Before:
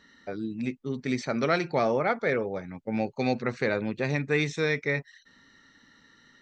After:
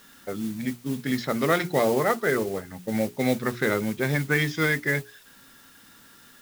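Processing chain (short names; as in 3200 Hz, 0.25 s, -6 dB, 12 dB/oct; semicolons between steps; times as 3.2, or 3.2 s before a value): formant shift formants -2 st; notches 60/120/180/240/300/360/420 Hz; modulation noise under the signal 17 dB; in parallel at -7 dB: requantised 8-bit, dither triangular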